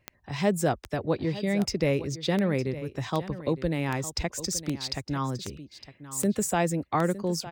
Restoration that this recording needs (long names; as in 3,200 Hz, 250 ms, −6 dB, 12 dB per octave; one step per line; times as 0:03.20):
click removal
echo removal 909 ms −14.5 dB